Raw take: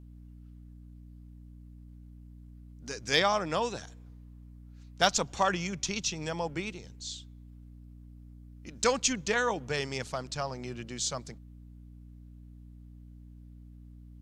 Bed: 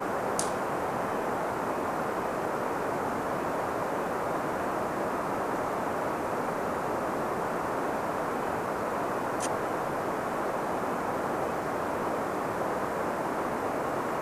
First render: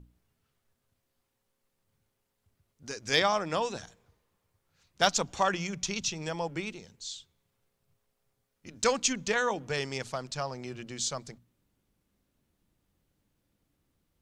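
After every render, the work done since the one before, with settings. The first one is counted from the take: notches 60/120/180/240/300 Hz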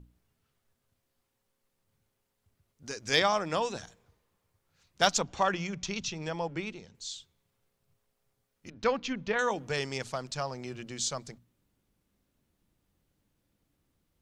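5.19–6.95 air absorption 88 m; 8.7–9.39 air absorption 280 m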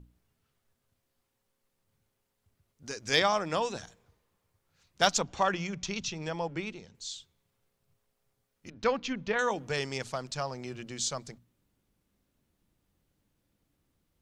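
nothing audible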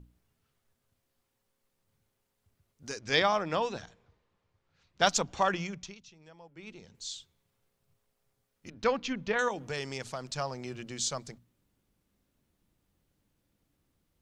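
2.99–5.07 LPF 4500 Hz; 5.59–6.94 dip -19.5 dB, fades 0.39 s; 9.48–10.29 compressor 1.5:1, threshold -37 dBFS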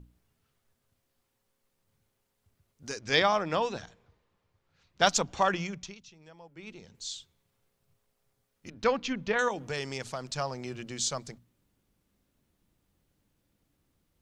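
gain +1.5 dB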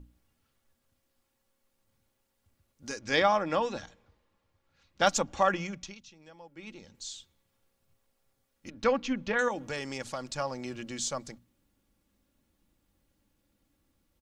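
dynamic EQ 4200 Hz, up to -6 dB, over -43 dBFS, Q 1; comb 3.6 ms, depth 41%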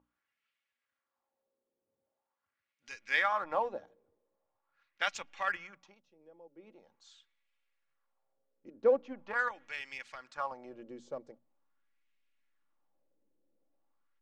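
LFO band-pass sine 0.43 Hz 420–2400 Hz; in parallel at -10 dB: backlash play -34 dBFS

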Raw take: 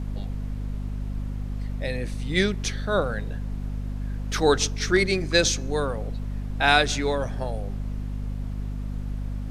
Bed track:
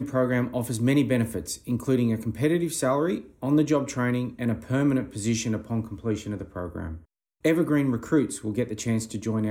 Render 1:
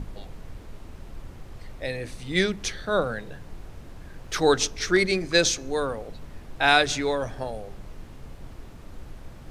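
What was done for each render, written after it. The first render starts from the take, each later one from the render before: notches 50/100/150/200/250 Hz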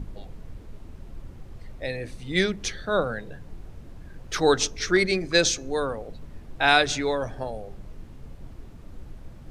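denoiser 6 dB, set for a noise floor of -44 dBFS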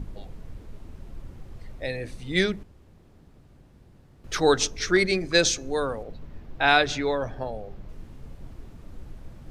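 2.63–4.24 room tone; 6.03–7.89 bell 9300 Hz -11 dB 1.1 oct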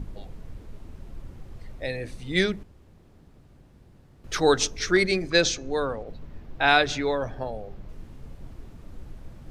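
5.3–6.07 LPF 5800 Hz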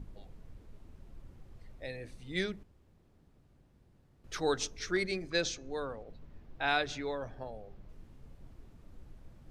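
gain -11 dB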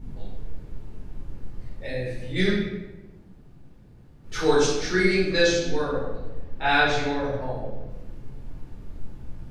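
shoebox room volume 500 m³, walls mixed, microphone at 4.3 m

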